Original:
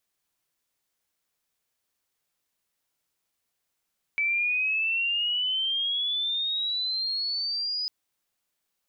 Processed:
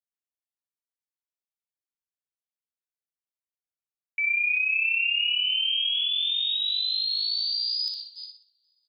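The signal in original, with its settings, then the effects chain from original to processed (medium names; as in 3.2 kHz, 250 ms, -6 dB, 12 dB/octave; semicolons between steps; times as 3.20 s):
sweep logarithmic 2.3 kHz -> 5 kHz -22.5 dBFS -> -27 dBFS 3.70 s
backward echo that repeats 243 ms, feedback 65%, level -11 dB; gate -39 dBFS, range -25 dB; on a send: feedback delay 60 ms, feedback 31%, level -5 dB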